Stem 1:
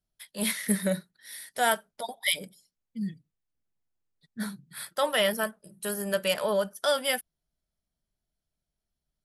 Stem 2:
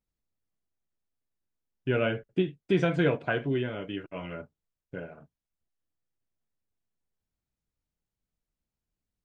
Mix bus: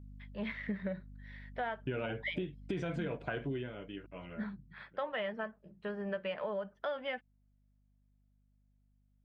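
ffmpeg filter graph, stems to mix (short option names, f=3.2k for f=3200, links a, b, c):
-filter_complex "[0:a]lowpass=f=2.5k:w=0.5412,lowpass=f=2.5k:w=1.3066,equalizer=f=1.4k:w=7.2:g=-3.5,volume=-4dB[a];[1:a]alimiter=limit=-19dB:level=0:latency=1:release=12,aeval=exprs='val(0)+0.00398*(sin(2*PI*50*n/s)+sin(2*PI*2*50*n/s)/2+sin(2*PI*3*50*n/s)/3+sin(2*PI*4*50*n/s)/4+sin(2*PI*5*50*n/s)/5)':c=same,volume=-1dB,afade=t=out:st=3.44:d=0.29:silence=0.375837,afade=t=out:st=4.6:d=0.31:silence=0.237137[b];[a][b]amix=inputs=2:normalize=0,acompressor=threshold=-34dB:ratio=5"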